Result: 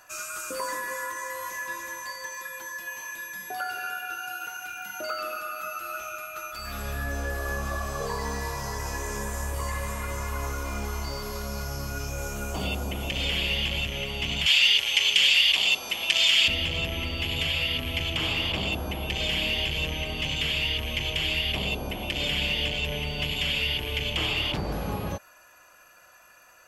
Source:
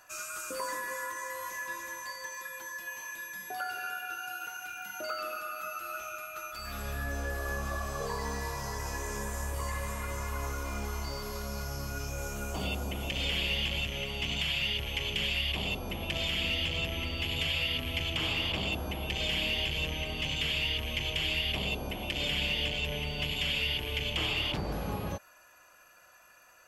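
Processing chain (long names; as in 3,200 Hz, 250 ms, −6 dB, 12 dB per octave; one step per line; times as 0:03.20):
0:14.46–0:16.48: meter weighting curve ITU-R 468
level +4 dB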